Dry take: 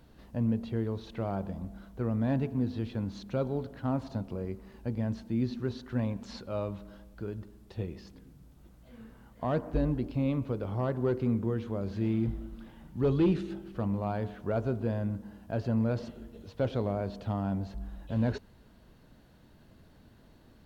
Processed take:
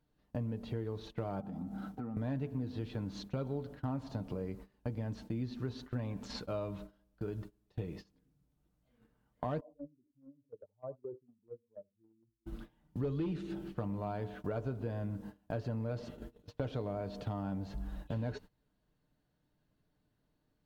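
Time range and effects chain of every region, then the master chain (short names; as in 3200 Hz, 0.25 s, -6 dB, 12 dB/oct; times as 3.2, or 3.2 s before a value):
1.4–2.17 HPF 66 Hz + compressor 5:1, threshold -47 dBFS + small resonant body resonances 240/770/1300 Hz, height 15 dB
9.6–12.46 spectral contrast raised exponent 2.5 + band-pass 840 Hz, Q 2.9 + echo 79 ms -18 dB
whole clip: gate -44 dBFS, range -23 dB; comb 6.7 ms, depth 41%; compressor 4:1, threshold -38 dBFS; gain +2.5 dB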